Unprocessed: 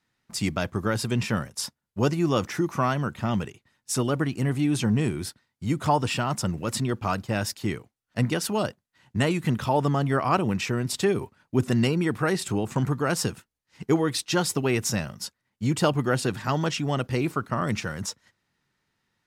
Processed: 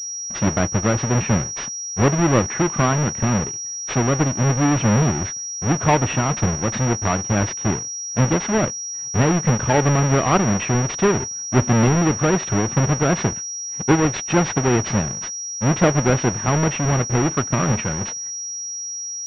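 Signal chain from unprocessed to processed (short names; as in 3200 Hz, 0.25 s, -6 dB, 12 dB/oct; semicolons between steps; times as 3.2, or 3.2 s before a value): half-waves squared off; vibrato 0.4 Hz 42 cents; pulse-width modulation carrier 5700 Hz; gain +2.5 dB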